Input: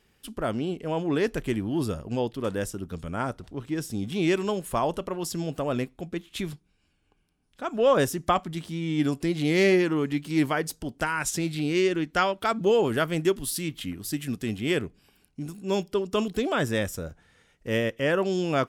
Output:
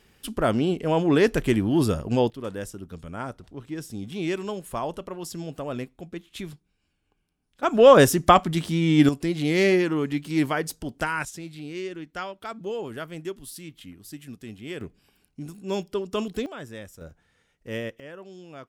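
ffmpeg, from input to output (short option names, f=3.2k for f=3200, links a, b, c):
-af "asetnsamples=n=441:p=0,asendcmd='2.3 volume volume -4dB;7.63 volume volume 8dB;9.09 volume volume 0.5dB;11.25 volume volume -10dB;14.81 volume volume -2dB;16.46 volume volume -13dB;17.01 volume volume -6dB;18 volume volume -18dB',volume=6dB"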